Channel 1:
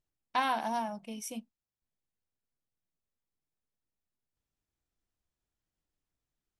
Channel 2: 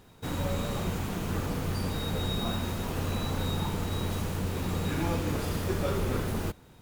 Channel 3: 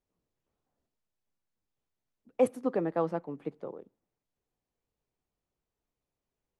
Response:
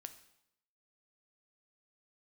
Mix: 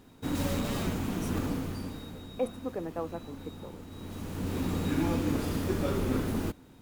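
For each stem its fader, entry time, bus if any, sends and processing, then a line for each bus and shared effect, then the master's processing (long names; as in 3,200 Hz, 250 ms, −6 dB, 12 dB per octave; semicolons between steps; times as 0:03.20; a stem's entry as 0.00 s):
−5.5 dB, 0.00 s, no send, wrap-around overflow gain 32 dB
−2.5 dB, 0.00 s, no send, parametric band 270 Hz +10 dB 0.59 octaves; automatic ducking −14 dB, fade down 0.80 s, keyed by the third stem
−6.0 dB, 0.00 s, no send, no processing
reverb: not used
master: no processing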